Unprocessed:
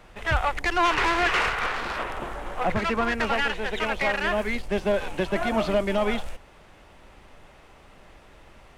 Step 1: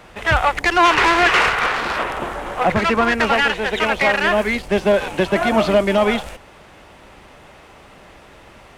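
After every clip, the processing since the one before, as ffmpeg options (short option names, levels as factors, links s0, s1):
-af "highpass=f=83:p=1,volume=2.66"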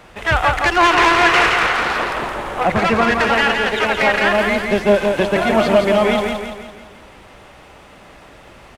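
-af "aecho=1:1:169|338|507|676|845|1014:0.596|0.28|0.132|0.0618|0.0291|0.0137"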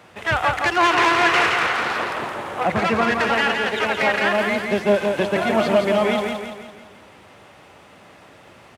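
-af "highpass=f=82:w=0.5412,highpass=f=82:w=1.3066,volume=0.631"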